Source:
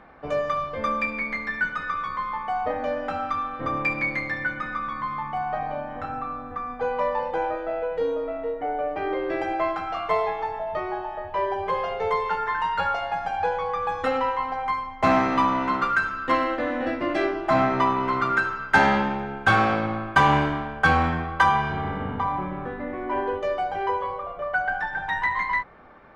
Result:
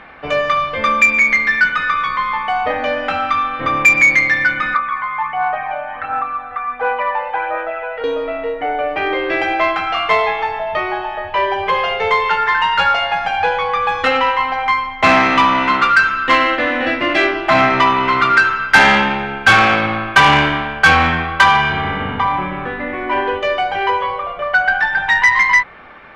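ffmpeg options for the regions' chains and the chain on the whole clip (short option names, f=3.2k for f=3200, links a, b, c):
-filter_complex "[0:a]asettb=1/sr,asplit=3[a][b][c];[a]atrim=end=4.744[d];[b]atrim=start=4.74:end=8.04,asetpts=PTS-STARTPTS,afade=t=in:d=0.004:c=qsin,afade=t=out:st=3.296:d=0.004:c=qsin,aphaser=in_gain=1:out_gain=1:delay=1.5:decay=0.45:speed=1.4:type=sinusoidal,acrossover=split=2600[e][f];[f]acompressor=threshold=-57dB:ratio=4:attack=1:release=60[g];[e][g]amix=inputs=2:normalize=0,acrossover=split=570 2900:gain=0.178 1 0.112[h][i][j];[h][i][j]amix=inputs=3:normalize=0[k];[c]atrim=start=8.036[l];[d][k]acrossfade=d=0.004:c1=hsin:c2=qsin[m];[m][l]acrossfade=d=0.004:c1=qsin:c2=hsin,equalizer=f=2.7k:w=0.73:g=13.5,acontrast=77,volume=-1dB"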